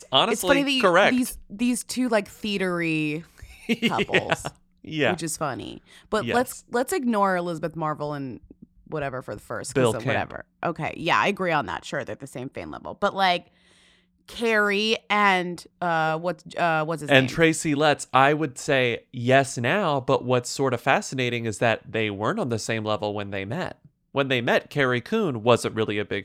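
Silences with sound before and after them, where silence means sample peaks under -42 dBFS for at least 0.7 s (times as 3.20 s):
13.41–14.28 s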